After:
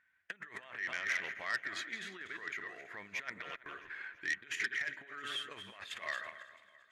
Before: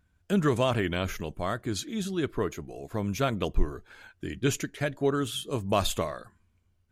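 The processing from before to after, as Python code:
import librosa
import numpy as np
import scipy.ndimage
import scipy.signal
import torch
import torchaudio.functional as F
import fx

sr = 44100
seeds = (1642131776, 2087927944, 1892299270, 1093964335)

y = fx.reverse_delay_fb(x, sr, ms=134, feedback_pct=44, wet_db=-10.5)
y = fx.over_compress(y, sr, threshold_db=-31.0, ratio=-0.5)
y = fx.bandpass_q(y, sr, hz=1900.0, q=8.2)
y = fx.echo_feedback(y, sr, ms=332, feedback_pct=54, wet_db=-20.0)
y = fx.transformer_sat(y, sr, knee_hz=2900.0)
y = y * librosa.db_to_amplitude(11.5)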